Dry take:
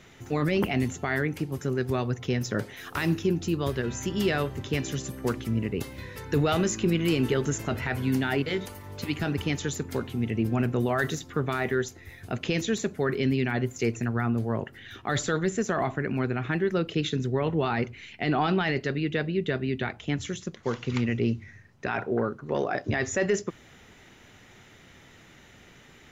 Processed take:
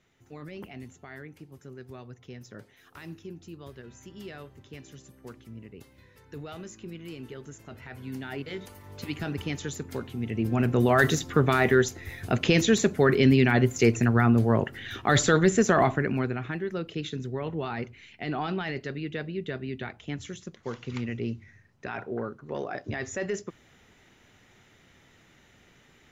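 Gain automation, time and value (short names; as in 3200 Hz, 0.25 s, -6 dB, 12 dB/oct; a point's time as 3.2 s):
7.58 s -16.5 dB
8.96 s -4 dB
10.2 s -4 dB
10.99 s +6 dB
15.82 s +6 dB
16.58 s -6 dB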